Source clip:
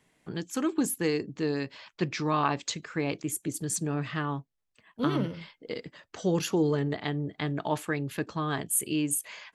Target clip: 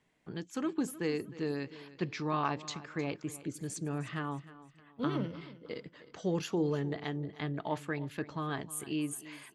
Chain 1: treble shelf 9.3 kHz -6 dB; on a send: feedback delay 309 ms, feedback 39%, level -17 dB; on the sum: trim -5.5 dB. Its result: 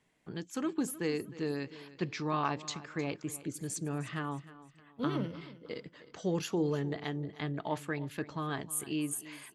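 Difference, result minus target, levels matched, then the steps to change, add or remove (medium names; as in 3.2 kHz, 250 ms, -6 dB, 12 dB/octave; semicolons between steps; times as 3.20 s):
8 kHz band +3.5 dB
change: treble shelf 9.3 kHz -15 dB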